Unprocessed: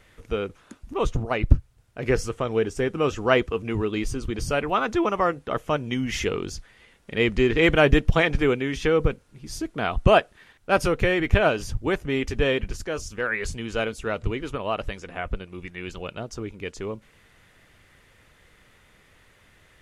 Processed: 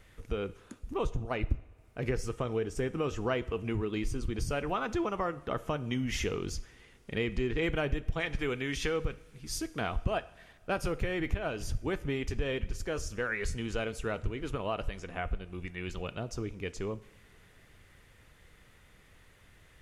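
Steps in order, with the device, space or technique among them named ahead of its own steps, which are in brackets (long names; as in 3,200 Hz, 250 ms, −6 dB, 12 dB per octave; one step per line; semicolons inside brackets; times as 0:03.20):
0:08.20–0:09.81: tilt shelving filter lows −4 dB
ASMR close-microphone chain (low-shelf EQ 180 Hz +6 dB; downward compressor 4 to 1, threshold −24 dBFS, peak gain reduction 17.5 dB; high-shelf EQ 9,800 Hz +4.5 dB)
coupled-rooms reverb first 0.67 s, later 3.3 s, from −18 dB, DRR 14.5 dB
level −5 dB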